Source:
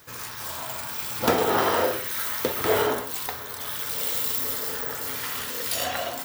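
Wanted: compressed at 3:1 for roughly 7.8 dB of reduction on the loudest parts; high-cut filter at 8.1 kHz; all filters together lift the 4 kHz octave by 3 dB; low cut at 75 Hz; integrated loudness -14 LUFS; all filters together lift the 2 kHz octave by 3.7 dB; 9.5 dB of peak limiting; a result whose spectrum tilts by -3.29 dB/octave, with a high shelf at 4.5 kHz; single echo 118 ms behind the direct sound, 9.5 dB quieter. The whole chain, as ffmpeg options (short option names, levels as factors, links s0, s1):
-af "highpass=75,lowpass=8100,equalizer=f=2000:t=o:g=4.5,equalizer=f=4000:t=o:g=5,highshelf=f=4500:g=-5,acompressor=threshold=0.0447:ratio=3,alimiter=limit=0.0841:level=0:latency=1,aecho=1:1:118:0.335,volume=7.5"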